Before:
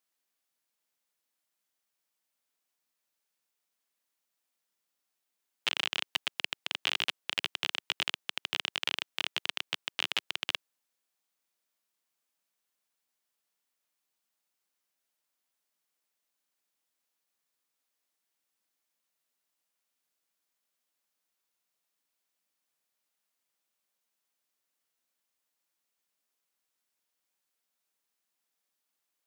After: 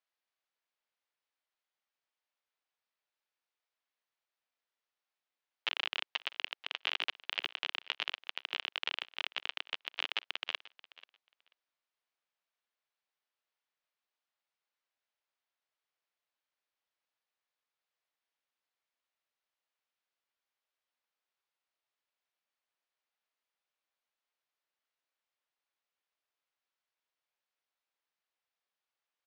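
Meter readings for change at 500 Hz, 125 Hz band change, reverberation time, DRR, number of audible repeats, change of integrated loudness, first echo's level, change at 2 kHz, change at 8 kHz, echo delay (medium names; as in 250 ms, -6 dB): -4.0 dB, under -20 dB, no reverb, no reverb, 1, -4.0 dB, -19.5 dB, -3.0 dB, -15.0 dB, 487 ms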